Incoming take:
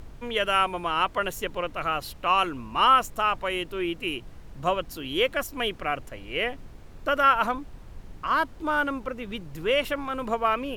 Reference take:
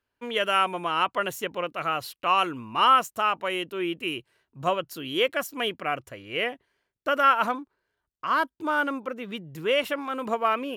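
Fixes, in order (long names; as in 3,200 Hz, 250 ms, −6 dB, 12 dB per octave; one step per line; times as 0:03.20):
noise reduction from a noise print 30 dB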